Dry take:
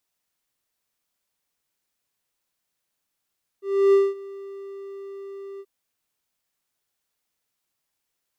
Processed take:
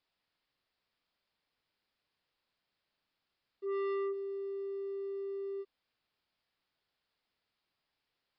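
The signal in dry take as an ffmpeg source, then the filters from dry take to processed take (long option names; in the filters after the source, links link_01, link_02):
-f lavfi -i "aevalsrc='0.316*(1-4*abs(mod(394*t+0.25,1)-0.5))':duration=2.031:sample_rate=44100,afade=type=in:duration=0.31,afade=type=out:start_time=0.31:duration=0.211:silence=0.075,afade=type=out:start_time=1.98:duration=0.051"
-af "acompressor=threshold=-20dB:ratio=6,aresample=11025,asoftclip=type=tanh:threshold=-33dB,aresample=44100"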